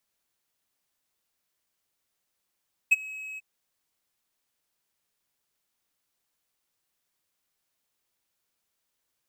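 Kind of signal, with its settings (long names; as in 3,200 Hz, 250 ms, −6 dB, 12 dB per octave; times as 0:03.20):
note with an ADSR envelope triangle 2,560 Hz, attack 15 ms, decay 25 ms, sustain −23 dB, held 0.47 s, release 24 ms −11 dBFS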